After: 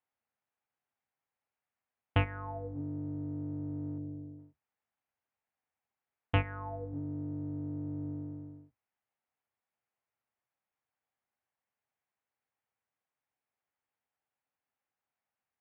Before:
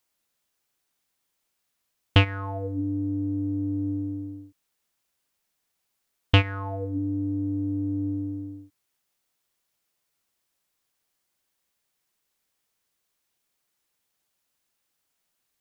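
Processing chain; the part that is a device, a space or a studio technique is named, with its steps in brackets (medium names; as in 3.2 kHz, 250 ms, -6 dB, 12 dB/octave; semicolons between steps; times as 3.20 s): sub-octave bass pedal (octave divider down 1 oct, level -4 dB; cabinet simulation 80–2400 Hz, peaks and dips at 170 Hz -6 dB, 340 Hz -6 dB, 790 Hz +6 dB); 3.98–4.39 s: high-order bell 2 kHz -14 dB 2.6 oct; trim -8.5 dB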